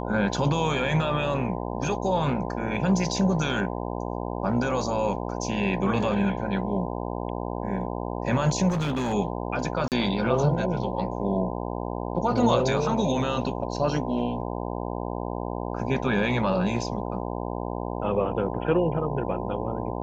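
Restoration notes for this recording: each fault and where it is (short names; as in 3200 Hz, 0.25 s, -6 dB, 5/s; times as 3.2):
buzz 60 Hz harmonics 17 -31 dBFS
8.68–9.14 clipped -23 dBFS
9.88–9.92 gap 38 ms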